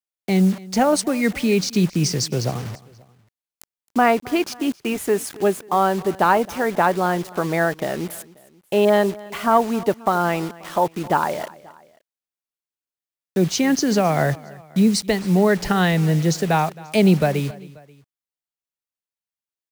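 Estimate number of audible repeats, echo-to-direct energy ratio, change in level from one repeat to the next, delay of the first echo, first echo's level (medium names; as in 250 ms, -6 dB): 2, -20.0 dB, -5.5 dB, 267 ms, -21.0 dB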